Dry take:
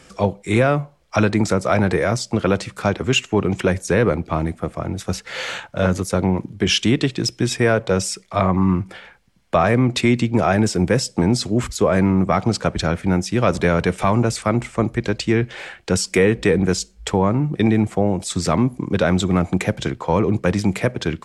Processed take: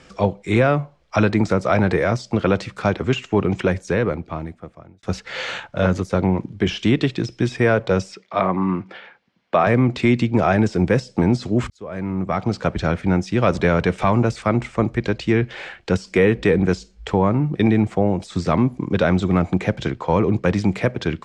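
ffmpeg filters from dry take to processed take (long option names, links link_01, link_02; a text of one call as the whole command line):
ffmpeg -i in.wav -filter_complex "[0:a]asettb=1/sr,asplit=3[link_01][link_02][link_03];[link_01]atrim=end=8.124[link_04];[link_02]atrim=start=8.12:end=9.67,asetpts=PTS-STARTPTS,afade=type=in:duration=0.004:curve=qsin,afade=type=out:start_time=1.546:duration=0.004:curve=qsin,highpass=210,lowpass=4500[link_05];[link_03]atrim=start=9.666[link_06];[link_04][link_05]acrossfade=duration=0.004:curve1=hsin:curve2=qsin[link_07];[link_07][link_06]acrossfade=duration=0.004:curve1=qsin:curve2=hsin,asplit=3[link_08][link_09][link_10];[link_08]atrim=end=5.03,asetpts=PTS-STARTPTS,afade=type=out:start_time=3.52:duration=1.51[link_11];[link_09]atrim=start=5.03:end=11.7,asetpts=PTS-STARTPTS,afade=type=in:duration=0.004:curve=hsin,afade=type=out:start_time=6.666:duration=0.004:curve=hsin[link_12];[link_10]atrim=start=11.7,asetpts=PTS-STARTPTS,afade=type=in:duration=1.05[link_13];[link_11][link_12][link_13]concat=n=3:v=0:a=1,deesser=0.6,lowpass=5500" out.wav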